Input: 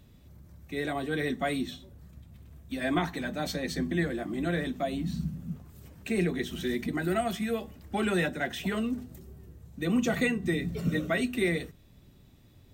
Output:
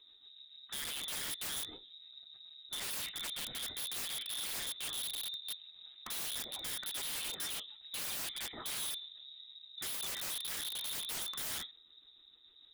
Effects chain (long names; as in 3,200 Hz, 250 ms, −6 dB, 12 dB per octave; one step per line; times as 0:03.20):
rotating-speaker cabinet horn 6.7 Hz
voice inversion scrambler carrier 3,800 Hz
wrap-around overflow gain 30 dB
level −4.5 dB